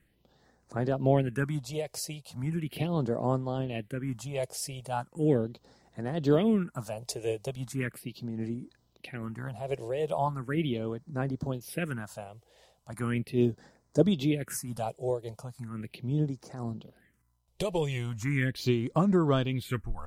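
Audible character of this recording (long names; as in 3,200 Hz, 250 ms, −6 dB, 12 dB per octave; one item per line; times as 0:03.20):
phaser sweep stages 4, 0.38 Hz, lowest notch 230–2,900 Hz
amplitude modulation by smooth noise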